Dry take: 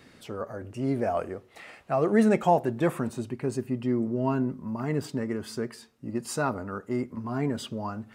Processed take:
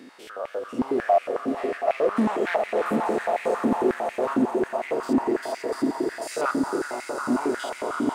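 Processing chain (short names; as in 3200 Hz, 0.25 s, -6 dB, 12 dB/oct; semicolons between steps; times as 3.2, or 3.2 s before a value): stepped spectrum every 0.1 s; in parallel at -2 dB: compressor, threshold -37 dBFS, peak gain reduction 18 dB; on the sum: swelling echo 86 ms, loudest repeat 8, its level -10.5 dB; overloaded stage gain 21.5 dB; stepped high-pass 11 Hz 270–2200 Hz; gain -1 dB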